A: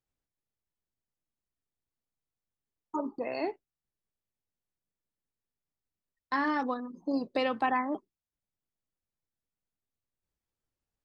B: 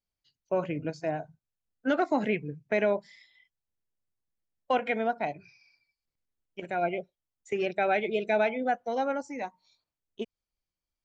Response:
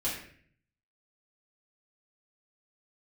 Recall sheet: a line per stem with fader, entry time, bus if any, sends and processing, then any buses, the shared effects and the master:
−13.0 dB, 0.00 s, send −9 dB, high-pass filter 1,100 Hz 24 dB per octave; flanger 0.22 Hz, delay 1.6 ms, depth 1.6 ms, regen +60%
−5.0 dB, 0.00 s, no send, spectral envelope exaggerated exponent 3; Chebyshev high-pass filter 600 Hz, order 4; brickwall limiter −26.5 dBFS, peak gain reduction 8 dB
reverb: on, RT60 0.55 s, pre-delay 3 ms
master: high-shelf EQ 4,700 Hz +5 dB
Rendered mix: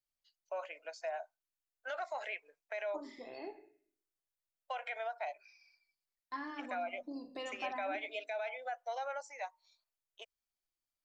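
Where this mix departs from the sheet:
stem A: missing high-pass filter 1,100 Hz 24 dB per octave
stem B: missing spectral envelope exaggerated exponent 3

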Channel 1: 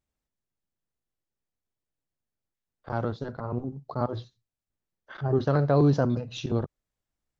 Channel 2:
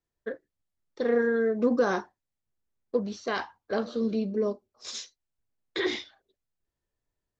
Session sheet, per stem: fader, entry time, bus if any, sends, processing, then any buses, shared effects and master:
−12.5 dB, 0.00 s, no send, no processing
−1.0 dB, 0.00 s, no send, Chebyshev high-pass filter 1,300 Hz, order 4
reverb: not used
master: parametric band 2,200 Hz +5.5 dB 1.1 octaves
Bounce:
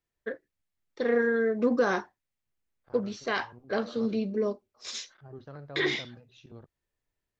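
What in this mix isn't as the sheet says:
stem 1 −12.5 dB → −21.5 dB
stem 2: missing Chebyshev high-pass filter 1,300 Hz, order 4

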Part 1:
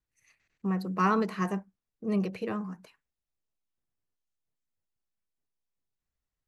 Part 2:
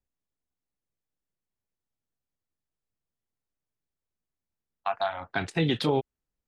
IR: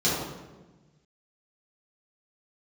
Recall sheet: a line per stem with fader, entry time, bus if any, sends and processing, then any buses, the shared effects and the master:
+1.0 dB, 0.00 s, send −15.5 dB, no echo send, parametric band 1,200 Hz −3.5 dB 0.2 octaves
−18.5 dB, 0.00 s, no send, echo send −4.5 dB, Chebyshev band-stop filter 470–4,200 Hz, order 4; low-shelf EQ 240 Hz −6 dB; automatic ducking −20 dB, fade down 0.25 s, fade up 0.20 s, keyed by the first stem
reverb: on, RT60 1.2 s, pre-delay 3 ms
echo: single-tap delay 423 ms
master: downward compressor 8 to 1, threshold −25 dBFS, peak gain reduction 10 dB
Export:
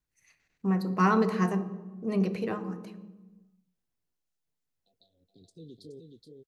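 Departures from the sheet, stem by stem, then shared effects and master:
stem 1: send −15.5 dB → −23 dB
master: missing downward compressor 8 to 1, threshold −25 dBFS, peak gain reduction 10 dB

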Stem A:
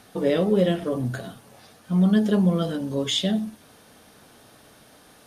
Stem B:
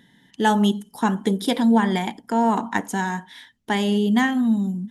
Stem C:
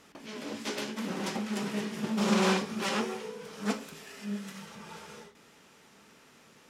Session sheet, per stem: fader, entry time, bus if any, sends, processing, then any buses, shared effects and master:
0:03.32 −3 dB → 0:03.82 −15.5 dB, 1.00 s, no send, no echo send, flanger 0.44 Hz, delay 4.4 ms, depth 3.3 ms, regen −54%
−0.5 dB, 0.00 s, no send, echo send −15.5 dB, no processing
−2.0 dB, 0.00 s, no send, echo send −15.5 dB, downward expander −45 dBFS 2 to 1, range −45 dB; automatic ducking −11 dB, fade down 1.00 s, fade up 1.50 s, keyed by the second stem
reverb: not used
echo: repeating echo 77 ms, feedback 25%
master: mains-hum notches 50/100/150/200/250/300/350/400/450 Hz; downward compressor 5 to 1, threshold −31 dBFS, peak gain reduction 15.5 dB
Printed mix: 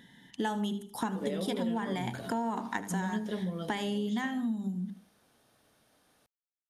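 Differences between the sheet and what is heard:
stem A: missing flanger 0.44 Hz, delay 4.4 ms, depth 3.3 ms, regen −54%
stem C: muted

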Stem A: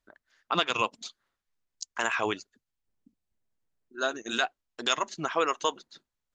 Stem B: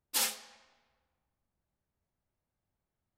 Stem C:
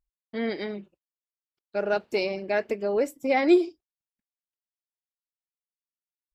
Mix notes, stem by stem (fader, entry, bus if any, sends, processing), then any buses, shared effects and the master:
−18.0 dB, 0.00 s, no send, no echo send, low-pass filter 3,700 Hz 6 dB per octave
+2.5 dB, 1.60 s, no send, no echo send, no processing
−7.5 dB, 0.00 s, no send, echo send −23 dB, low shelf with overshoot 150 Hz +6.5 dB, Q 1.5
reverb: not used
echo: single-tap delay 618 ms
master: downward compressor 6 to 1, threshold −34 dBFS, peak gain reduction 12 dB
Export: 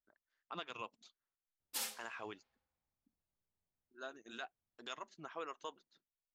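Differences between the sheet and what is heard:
stem B +2.5 dB → −9.5 dB
stem C: muted

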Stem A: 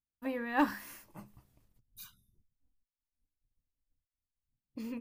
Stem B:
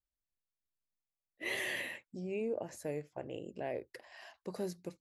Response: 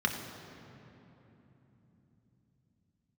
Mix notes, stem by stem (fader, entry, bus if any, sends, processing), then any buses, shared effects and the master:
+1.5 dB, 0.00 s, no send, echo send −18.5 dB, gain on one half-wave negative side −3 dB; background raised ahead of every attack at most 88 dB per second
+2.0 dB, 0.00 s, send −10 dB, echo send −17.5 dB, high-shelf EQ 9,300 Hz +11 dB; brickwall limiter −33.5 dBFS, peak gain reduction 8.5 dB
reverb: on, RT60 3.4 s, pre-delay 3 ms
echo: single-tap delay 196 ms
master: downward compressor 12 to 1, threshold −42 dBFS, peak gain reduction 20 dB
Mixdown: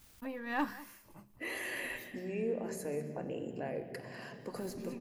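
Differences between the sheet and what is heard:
stem A +1.5 dB → −4.5 dB
master: missing downward compressor 12 to 1, threshold −42 dBFS, peak gain reduction 20 dB

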